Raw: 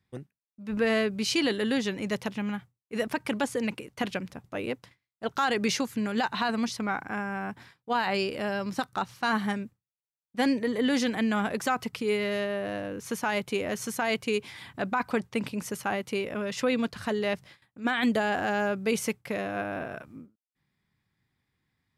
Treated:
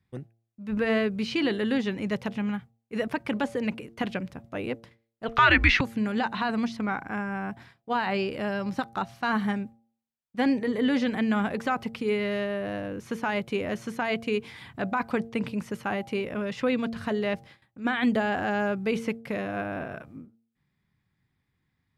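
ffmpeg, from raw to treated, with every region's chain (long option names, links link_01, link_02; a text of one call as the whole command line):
ffmpeg -i in.wav -filter_complex "[0:a]asettb=1/sr,asplit=3[link_01][link_02][link_03];[link_01]atrim=end=5.284[link_04];[link_02]atrim=start=5.28:end=5.81,asetpts=PTS-STARTPTS,afade=type=in:duration=0.004:curve=qsin,afade=type=out:start_time=0.526:duration=0.004:curve=qsin,equalizer=frequency=2300:width_type=o:width=1.9:gain=15,bandreject=frequency=820:width=11,afreqshift=-150[link_05];[link_03]atrim=start=5.806[link_06];[link_04][link_05]acrossfade=duration=0.004:curve1=hsin:curve2=qsin[link_07];[link_07][link_06]acrossfade=duration=0.004:curve1=qsin:curve2=hsin,bandreject=frequency=114.2:width_type=h:width=4,bandreject=frequency=228.4:width_type=h:width=4,bandreject=frequency=342.6:width_type=h:width=4,bandreject=frequency=456.8:width_type=h:width=4,bandreject=frequency=571:width_type=h:width=4,bandreject=frequency=685.2:width_type=h:width=4,bandreject=frequency=799.4:width_type=h:width=4,acrossover=split=4200[link_08][link_09];[link_09]acompressor=threshold=-47dB:ratio=4:attack=1:release=60[link_10];[link_08][link_10]amix=inputs=2:normalize=0,bass=frequency=250:gain=4,treble=frequency=4000:gain=-5" out.wav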